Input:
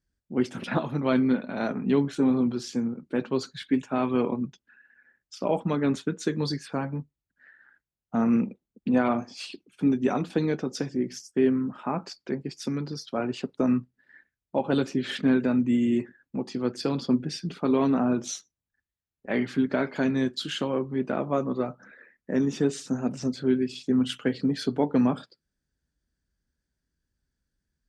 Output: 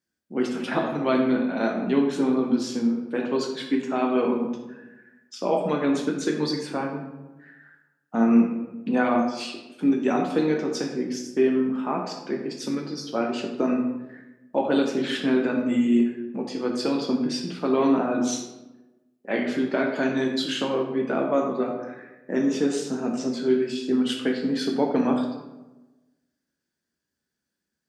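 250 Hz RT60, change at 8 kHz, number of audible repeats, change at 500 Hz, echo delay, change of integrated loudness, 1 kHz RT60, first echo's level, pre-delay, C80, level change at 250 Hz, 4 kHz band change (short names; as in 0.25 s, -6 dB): 1.3 s, +3.5 dB, none, +4.0 dB, none, +2.5 dB, 1.0 s, none, 7 ms, 7.5 dB, +2.0 dB, +3.5 dB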